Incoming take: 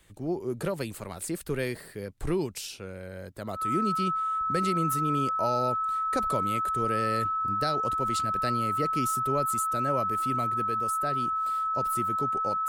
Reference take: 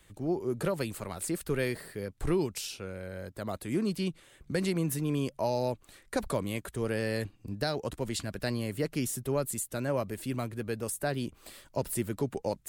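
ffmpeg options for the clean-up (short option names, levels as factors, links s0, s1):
-af "bandreject=f=1300:w=30,asetnsamples=n=441:p=0,asendcmd='10.63 volume volume 3dB',volume=1"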